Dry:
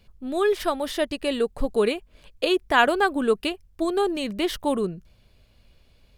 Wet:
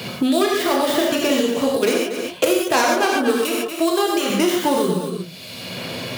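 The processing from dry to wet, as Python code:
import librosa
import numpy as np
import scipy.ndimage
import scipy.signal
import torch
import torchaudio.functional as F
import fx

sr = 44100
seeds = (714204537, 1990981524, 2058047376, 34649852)

y = fx.tracing_dist(x, sr, depth_ms=0.43)
y = scipy.signal.sosfilt(scipy.signal.butter(4, 120.0, 'highpass', fs=sr, output='sos'), y)
y = fx.over_compress(y, sr, threshold_db=-24.0, ratio=-0.5, at=(0.46, 1.83))
y = fx.low_shelf(y, sr, hz=470.0, db=-9.0, at=(3.3, 4.3))
y = y + 10.0 ** (-12.5 / 20.0) * np.pad(y, (int(233 * sr / 1000.0), 0))[:len(y)]
y = fx.rev_gated(y, sr, seeds[0], gate_ms=160, shape='flat', drr_db=-2.5)
y = fx.band_squash(y, sr, depth_pct=100)
y = y * librosa.db_to_amplitude(2.5)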